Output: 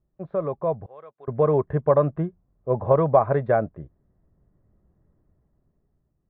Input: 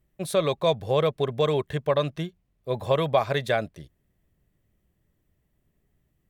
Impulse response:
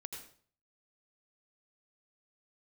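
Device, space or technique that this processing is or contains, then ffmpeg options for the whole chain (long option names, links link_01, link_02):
action camera in a waterproof case: -filter_complex "[0:a]asettb=1/sr,asplit=3[link_01][link_02][link_03];[link_01]atrim=end=0.864[link_04];[link_02]atrim=start=0.86:end=1.28,asetpts=PTS-STARTPTS,afade=type=in:duration=0.004:curve=qsin,afade=type=out:start_time=0.416:duration=0.004:curve=qsin,aderivative[link_05];[link_03]atrim=start=1.276[link_06];[link_04][link_05]acrossfade=duration=0.004:curve1=hsin:curve2=qsin[link_07];[link_07][link_06]acrossfade=duration=0.004:curve1=qsin:curve2=hsin,lowpass=frequency=1300:width=0.5412,lowpass=frequency=1300:width=1.3066,dynaudnorm=framelen=240:gausssize=11:maxgain=13dB,volume=-3dB" -ar 32000 -c:a aac -b:a 48k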